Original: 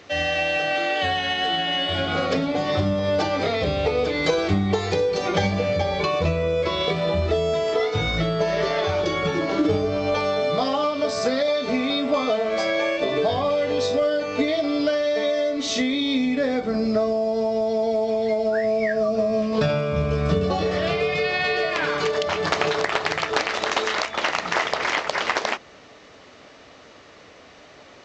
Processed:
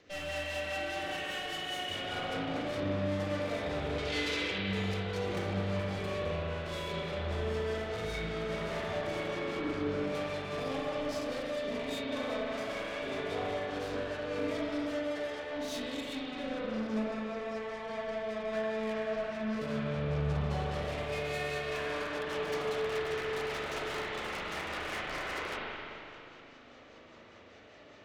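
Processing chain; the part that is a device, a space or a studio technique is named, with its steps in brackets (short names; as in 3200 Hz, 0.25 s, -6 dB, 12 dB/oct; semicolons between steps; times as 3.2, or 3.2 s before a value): overdriven rotary cabinet (tube stage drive 31 dB, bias 0.75; rotary speaker horn 5 Hz); 3.98–4.58 weighting filter D; spring tank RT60 2.8 s, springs 37/41 ms, chirp 50 ms, DRR -5.5 dB; gain -7 dB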